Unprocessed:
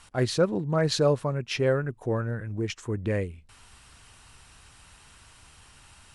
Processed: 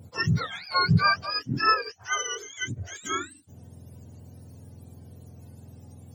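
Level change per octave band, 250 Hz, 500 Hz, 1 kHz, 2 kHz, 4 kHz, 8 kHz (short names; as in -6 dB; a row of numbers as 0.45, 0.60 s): -2.5, -13.0, +10.0, +9.0, +5.5, +5.0 dB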